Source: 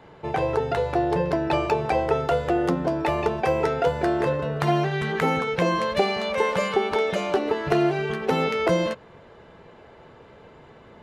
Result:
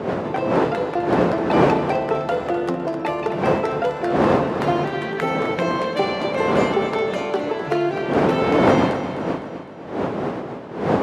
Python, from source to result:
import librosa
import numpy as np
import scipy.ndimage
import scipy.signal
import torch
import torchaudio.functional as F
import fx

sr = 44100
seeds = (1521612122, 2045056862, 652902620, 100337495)

y = fx.dmg_wind(x, sr, seeds[0], corner_hz=530.0, level_db=-22.0)
y = scipy.signal.sosfilt(scipy.signal.butter(2, 160.0, 'highpass', fs=sr, output='sos'), y)
y = fx.high_shelf(y, sr, hz=7400.0, db=-5.0)
y = fx.echo_feedback(y, sr, ms=255, feedback_pct=51, wet_db=-10.5)